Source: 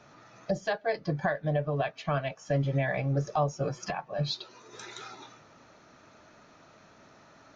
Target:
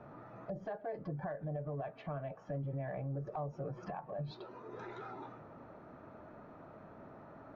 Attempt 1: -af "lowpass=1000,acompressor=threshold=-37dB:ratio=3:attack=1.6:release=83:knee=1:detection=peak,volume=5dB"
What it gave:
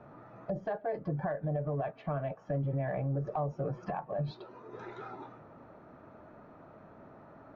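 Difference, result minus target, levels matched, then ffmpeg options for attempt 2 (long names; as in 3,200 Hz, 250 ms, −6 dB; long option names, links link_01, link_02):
downward compressor: peak gain reduction −6.5 dB
-af "lowpass=1000,acompressor=threshold=-47dB:ratio=3:attack=1.6:release=83:knee=1:detection=peak,volume=5dB"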